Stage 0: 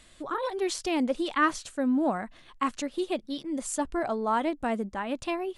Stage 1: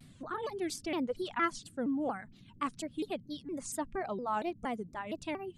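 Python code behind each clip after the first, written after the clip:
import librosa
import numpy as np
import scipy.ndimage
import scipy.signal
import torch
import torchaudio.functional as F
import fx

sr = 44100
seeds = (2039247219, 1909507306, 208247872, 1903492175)

y = fx.dereverb_blind(x, sr, rt60_s=1.1)
y = fx.dmg_noise_band(y, sr, seeds[0], low_hz=81.0, high_hz=260.0, level_db=-51.0)
y = fx.vibrato_shape(y, sr, shape='saw_down', rate_hz=4.3, depth_cents=250.0)
y = F.gain(torch.from_numpy(y), -6.5).numpy()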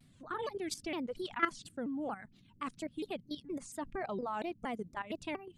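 y = fx.dynamic_eq(x, sr, hz=2600.0, q=0.99, threshold_db=-52.0, ratio=4.0, max_db=3)
y = fx.level_steps(y, sr, step_db=13)
y = F.gain(torch.from_numpy(y), 2.0).numpy()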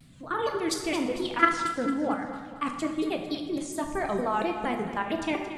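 y = fx.echo_feedback(x, sr, ms=225, feedback_pct=48, wet_db=-12.0)
y = fx.rev_plate(y, sr, seeds[1], rt60_s=1.2, hf_ratio=0.75, predelay_ms=0, drr_db=3.5)
y = F.gain(torch.from_numpy(y), 8.5).numpy()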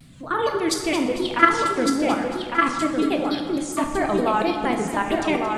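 y = x + 10.0 ** (-5.0 / 20.0) * np.pad(x, (int(1156 * sr / 1000.0), 0))[:len(x)]
y = F.gain(torch.from_numpy(y), 6.0).numpy()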